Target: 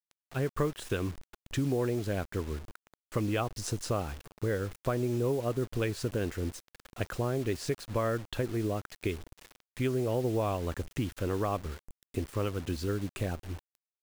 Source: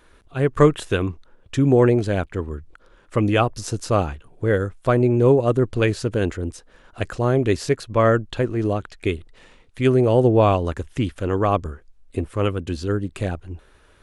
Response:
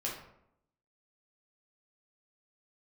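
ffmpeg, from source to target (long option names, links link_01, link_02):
-af "acompressor=threshold=-23dB:ratio=4,acrusher=bits=6:mix=0:aa=0.000001,volume=-5dB"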